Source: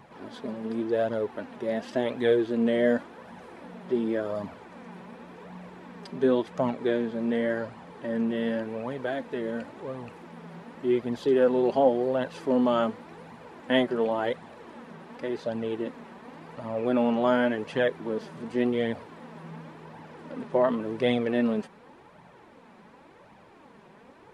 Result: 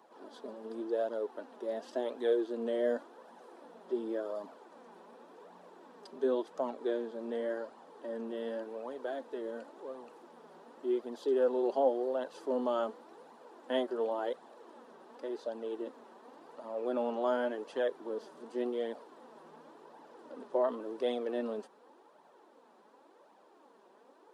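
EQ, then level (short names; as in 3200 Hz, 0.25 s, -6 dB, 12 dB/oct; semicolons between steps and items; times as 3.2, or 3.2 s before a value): HPF 300 Hz 24 dB/oct; bell 2200 Hz -12.5 dB 0.8 oct; -6.0 dB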